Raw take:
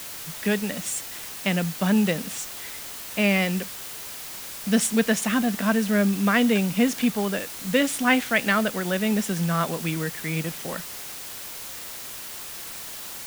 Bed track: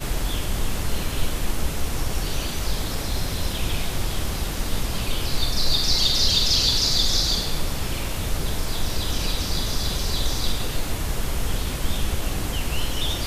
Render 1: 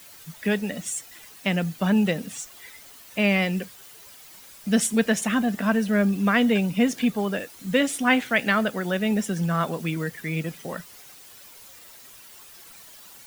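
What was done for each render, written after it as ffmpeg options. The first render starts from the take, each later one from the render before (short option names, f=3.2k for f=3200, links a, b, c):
-af "afftdn=nr=12:nf=-37"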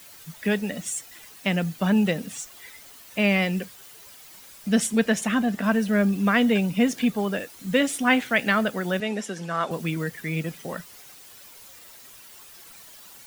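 -filter_complex "[0:a]asettb=1/sr,asplit=3[a][b][c];[a]atrim=end=4.684[d];[b]atrim=start=4.68:end=5.64,asetpts=PTS-STARTPTS,afade=t=in:d=0.004:c=qsin,afade=t=out:st=0.956:d=0.004:c=qsin,highshelf=f=8.2k:g=-4.5[e];[c]atrim=start=5.636[f];[d][e]acrossfade=d=0.004:c1=hsin:c2=qsin[g];[g][f]acrossfade=d=0.004:c1=qsin:c2=hsin,asettb=1/sr,asplit=3[h][i][j];[h]atrim=end=9.004[k];[i]atrim=start=9:end=9.71,asetpts=PTS-STARTPTS,afade=t=in:d=0.004:c=qsin,afade=t=out:st=0.706:d=0.004:c=qsin,highpass=310,lowpass=7.7k[l];[j]atrim=start=9.706[m];[k][l]acrossfade=d=0.004:c1=hsin:c2=qsin[n];[n][m]acrossfade=d=0.004:c1=qsin:c2=hsin"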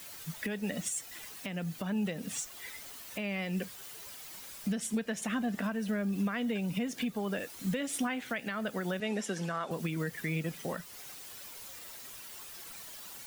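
-af "acompressor=threshold=-26dB:ratio=6,alimiter=limit=-24dB:level=0:latency=1:release=293"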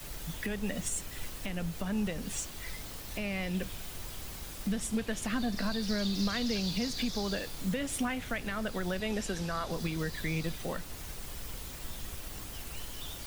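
-filter_complex "[1:a]volume=-18.5dB[a];[0:a][a]amix=inputs=2:normalize=0"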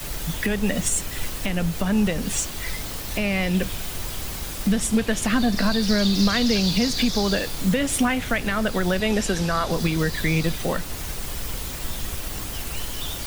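-af "volume=11.5dB"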